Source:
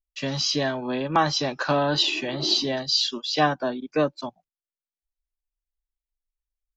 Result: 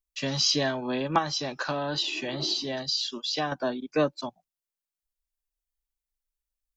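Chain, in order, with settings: high shelf 5300 Hz +7 dB; 1.18–3.52 compressor 3:1, threshold -26 dBFS, peak gain reduction 9 dB; gain -2 dB

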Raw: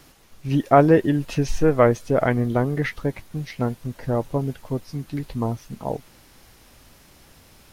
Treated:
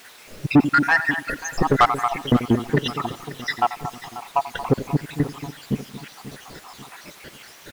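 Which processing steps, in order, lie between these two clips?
random spectral dropouts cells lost 84%; on a send: feedback echo 88 ms, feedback 34%, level -18 dB; on the sum: requantised 10-bit, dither triangular; low shelf 410 Hz +5 dB; outdoor echo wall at 39 m, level -15 dB; overdrive pedal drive 24 dB, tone 2400 Hz, clips at -7 dBFS; lo-fi delay 0.538 s, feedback 55%, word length 7-bit, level -15 dB; gain +2.5 dB

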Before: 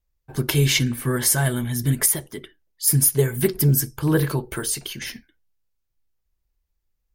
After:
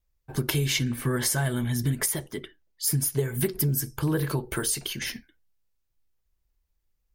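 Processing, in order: 0.8–3.36 bell 12000 Hz -5.5 dB 1 oct; compressor 6:1, threshold -22 dBFS, peak gain reduction 9 dB

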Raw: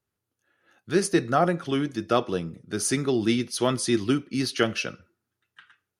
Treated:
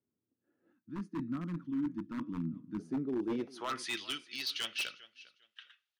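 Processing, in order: band-pass sweep 260 Hz -> 3400 Hz, 3.12–4.01; reverse; compressor 8:1, threshold -36 dBFS, peak gain reduction 15.5 dB; reverse; feedback echo 0.401 s, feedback 22%, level -20.5 dB; wavefolder -33 dBFS; spectral gain 0.72–2.79, 340–900 Hz -19 dB; gain +5 dB

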